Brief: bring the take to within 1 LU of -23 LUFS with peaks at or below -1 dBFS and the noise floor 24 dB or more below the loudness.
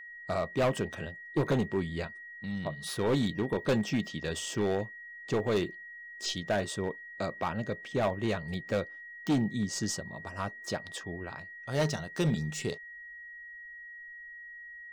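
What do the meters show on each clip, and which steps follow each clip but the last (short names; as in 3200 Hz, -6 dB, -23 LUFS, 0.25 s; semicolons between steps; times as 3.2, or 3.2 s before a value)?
clipped 1.5%; flat tops at -22.5 dBFS; steady tone 1900 Hz; tone level -44 dBFS; loudness -33.0 LUFS; peak -22.5 dBFS; loudness target -23.0 LUFS
-> clip repair -22.5 dBFS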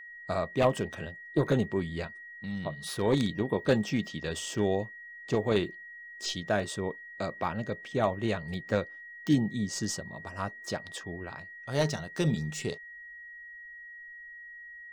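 clipped 0.0%; steady tone 1900 Hz; tone level -44 dBFS
-> notch 1900 Hz, Q 30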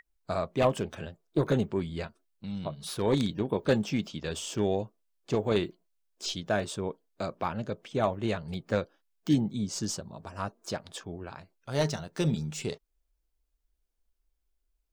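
steady tone none; loudness -31.5 LUFS; peak -13.0 dBFS; loudness target -23.0 LUFS
-> gain +8.5 dB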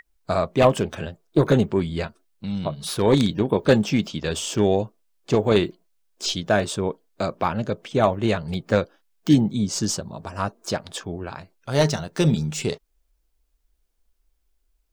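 loudness -23.0 LUFS; peak -4.5 dBFS; noise floor -70 dBFS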